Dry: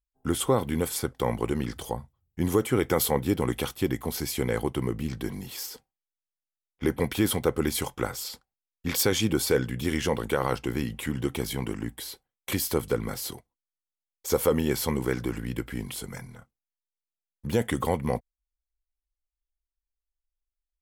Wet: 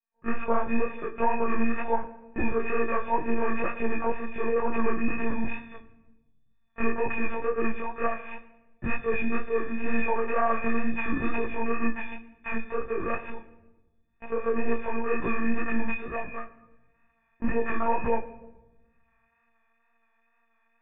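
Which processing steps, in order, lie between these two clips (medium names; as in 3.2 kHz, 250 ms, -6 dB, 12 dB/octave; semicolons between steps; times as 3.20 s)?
partials quantised in pitch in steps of 6 st; recorder AGC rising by 23 dB/s; high-pass 150 Hz 24 dB/octave; bass shelf 200 Hz -3.5 dB; hum notches 60/120/180/240/300 Hz; peak limiter -11 dBFS, peak gain reduction 11.5 dB; monotone LPC vocoder at 8 kHz 230 Hz; chorus 2.1 Hz, delay 17 ms, depth 5.2 ms; Chebyshev low-pass 2.9 kHz, order 6; reverberation RT60 1.1 s, pre-delay 5 ms, DRR 11 dB; trim -1.5 dB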